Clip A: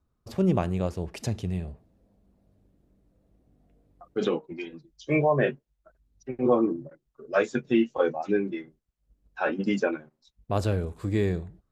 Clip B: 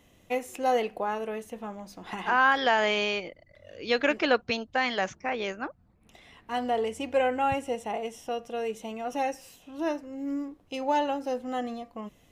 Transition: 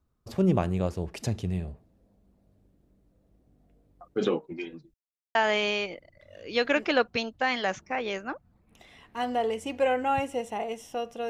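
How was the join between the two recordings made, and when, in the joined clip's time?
clip A
0:04.94–0:05.35: silence
0:05.35: continue with clip B from 0:02.69

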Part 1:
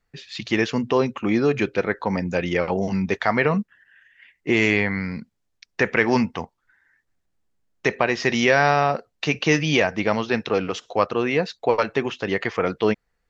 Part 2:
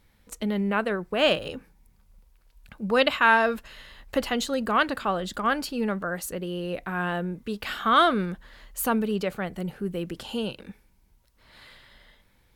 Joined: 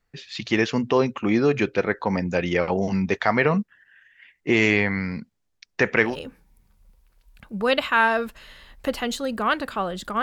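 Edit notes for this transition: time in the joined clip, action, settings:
part 1
0:06.10: continue with part 2 from 0:01.39, crossfade 0.12 s

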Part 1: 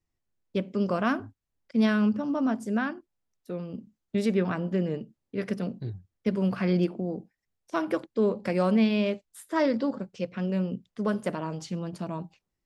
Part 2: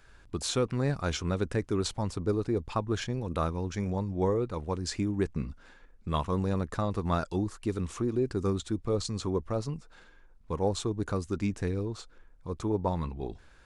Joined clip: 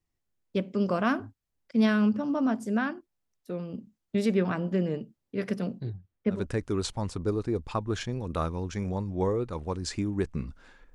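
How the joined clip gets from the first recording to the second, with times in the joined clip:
part 1
0:05.79–0:06.46: low-pass filter 7,700 Hz → 1,300 Hz
0:06.37: continue with part 2 from 0:01.38, crossfade 0.18 s

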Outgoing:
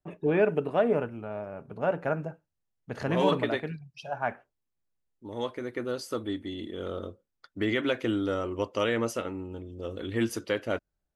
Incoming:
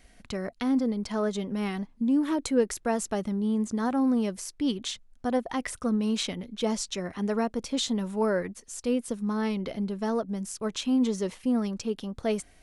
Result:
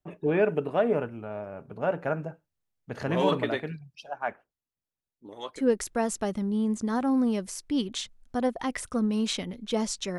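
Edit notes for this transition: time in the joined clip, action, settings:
outgoing
0:03.95–0:05.63: harmonic and percussive parts rebalanced harmonic −18 dB
0:05.59: continue with incoming from 0:02.49, crossfade 0.08 s

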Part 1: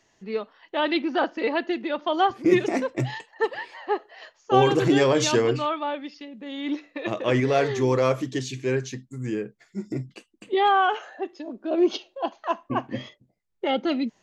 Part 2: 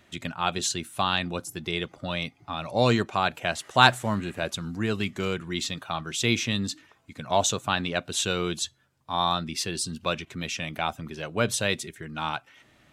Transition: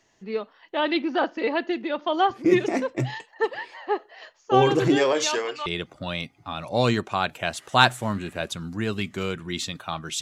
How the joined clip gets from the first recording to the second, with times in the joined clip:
part 1
0:04.95–0:05.66: high-pass filter 290 Hz → 1,000 Hz
0:05.66: continue with part 2 from 0:01.68

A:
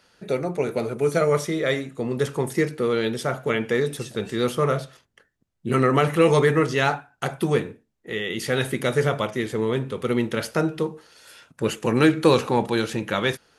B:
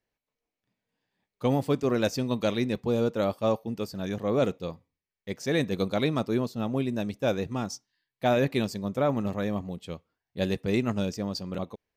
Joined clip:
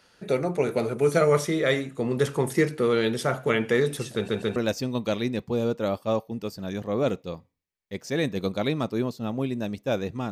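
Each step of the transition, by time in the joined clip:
A
0:04.14: stutter in place 0.14 s, 3 plays
0:04.56: continue with B from 0:01.92

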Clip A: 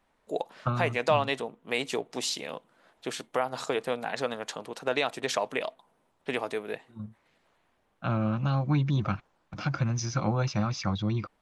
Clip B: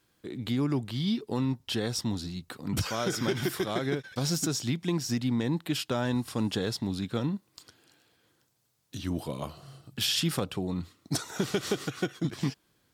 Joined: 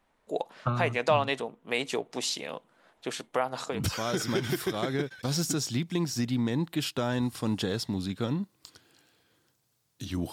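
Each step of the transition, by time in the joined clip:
clip A
0:03.74: continue with clip B from 0:02.67, crossfade 0.24 s

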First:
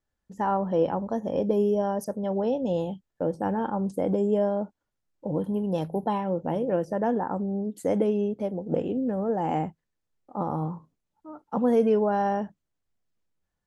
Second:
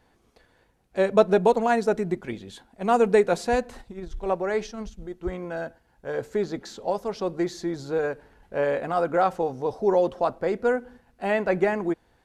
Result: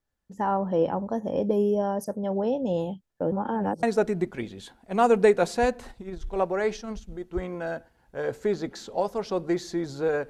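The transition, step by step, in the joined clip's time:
first
0:03.32–0:03.83: reverse
0:03.83: continue with second from 0:01.73

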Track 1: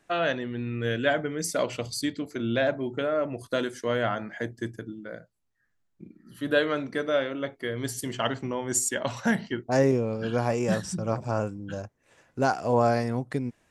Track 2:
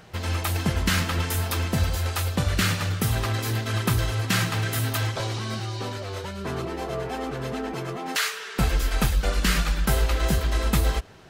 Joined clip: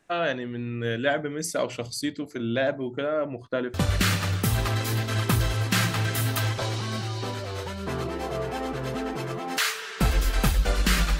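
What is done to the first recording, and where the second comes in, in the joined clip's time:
track 1
0:03.00–0:03.74: low-pass filter 8,100 Hz → 1,600 Hz
0:03.74: continue with track 2 from 0:02.32

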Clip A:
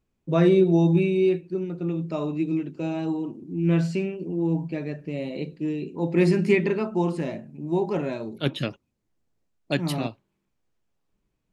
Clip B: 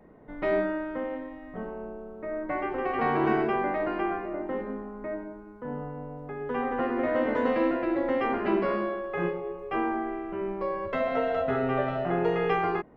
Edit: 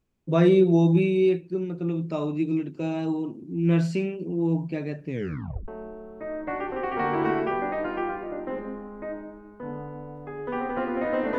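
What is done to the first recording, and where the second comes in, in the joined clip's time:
clip A
0:05.07: tape stop 0.61 s
0:05.68: continue with clip B from 0:01.70

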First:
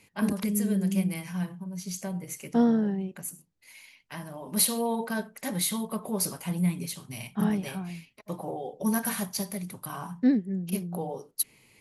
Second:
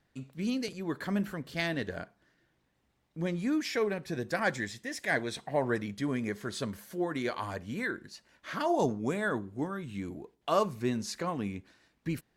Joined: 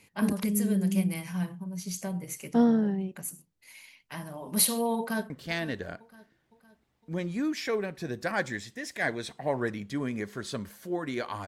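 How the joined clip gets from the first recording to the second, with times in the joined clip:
first
0:04.98–0:05.30: delay throw 510 ms, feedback 50%, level −17 dB
0:05.30: continue with second from 0:01.38

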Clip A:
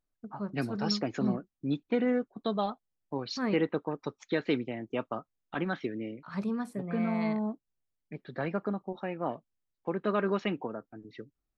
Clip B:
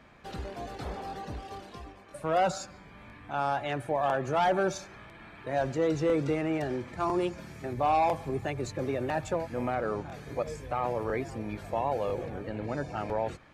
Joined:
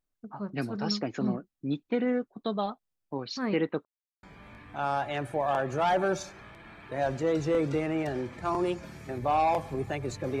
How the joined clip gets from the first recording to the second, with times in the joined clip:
clip A
0:03.85–0:04.23: silence
0:04.23: continue with clip B from 0:02.78

